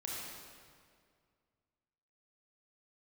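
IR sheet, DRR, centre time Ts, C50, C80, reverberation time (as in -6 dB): -4.5 dB, 0.127 s, -2.5 dB, -0.5 dB, 2.1 s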